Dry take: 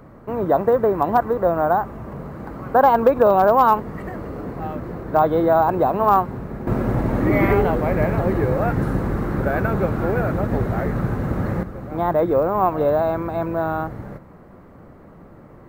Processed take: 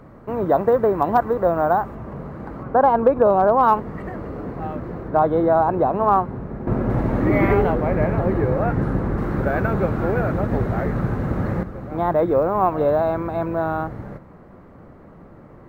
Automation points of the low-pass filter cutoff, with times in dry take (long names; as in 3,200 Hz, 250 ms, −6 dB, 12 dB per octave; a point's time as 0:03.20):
low-pass filter 6 dB per octave
8,200 Hz
from 0:01.95 3,300 Hz
from 0:02.63 1,200 Hz
from 0:03.63 3,300 Hz
from 0:05.08 1,600 Hz
from 0:06.90 3,600 Hz
from 0:07.73 2,100 Hz
from 0:09.18 5,100 Hz